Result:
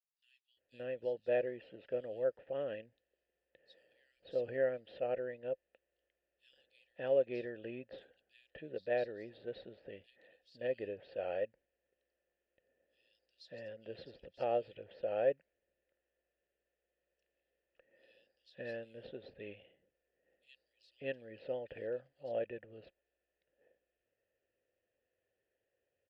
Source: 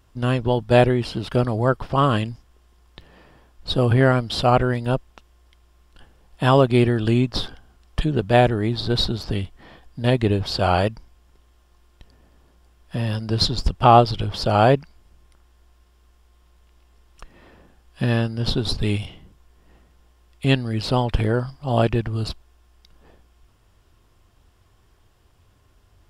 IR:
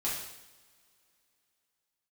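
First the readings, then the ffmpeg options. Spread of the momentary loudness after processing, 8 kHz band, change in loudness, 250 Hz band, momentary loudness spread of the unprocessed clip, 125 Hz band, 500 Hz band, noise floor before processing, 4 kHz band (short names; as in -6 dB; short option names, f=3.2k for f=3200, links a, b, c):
18 LU, under -35 dB, -19.0 dB, -27.5 dB, 11 LU, -36.5 dB, -14.5 dB, -58 dBFS, -31.5 dB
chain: -filter_complex "[0:a]asplit=3[a][b][c];[a]bandpass=f=530:t=q:w=8,volume=0dB[d];[b]bandpass=f=1.84k:t=q:w=8,volume=-6dB[e];[c]bandpass=f=2.48k:t=q:w=8,volume=-9dB[f];[d][e][f]amix=inputs=3:normalize=0,highshelf=f=4.5k:g=-7,acrossover=split=4000[g][h];[g]adelay=570[i];[i][h]amix=inputs=2:normalize=0,volume=-8dB"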